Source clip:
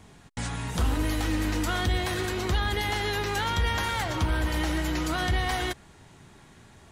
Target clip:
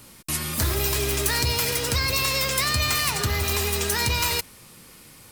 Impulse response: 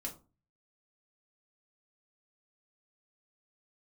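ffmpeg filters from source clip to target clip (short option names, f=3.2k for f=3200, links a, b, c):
-af "asetrate=57330,aresample=44100,crystalizer=i=3.5:c=0"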